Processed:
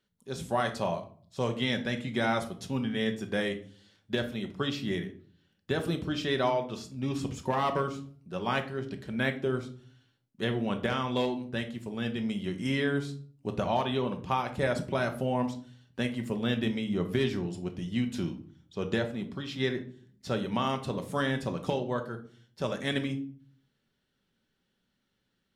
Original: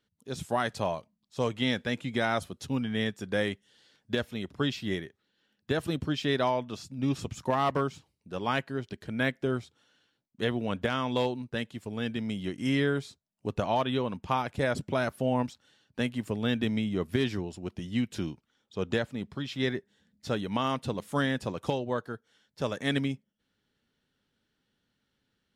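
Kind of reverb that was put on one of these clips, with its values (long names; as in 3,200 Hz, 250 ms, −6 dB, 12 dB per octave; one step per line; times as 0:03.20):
rectangular room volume 480 cubic metres, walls furnished, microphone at 1.1 metres
level −1.5 dB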